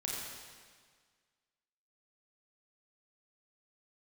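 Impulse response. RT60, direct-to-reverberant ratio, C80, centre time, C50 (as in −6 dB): 1.7 s, −4.0 dB, 0.0 dB, 109 ms, −1.5 dB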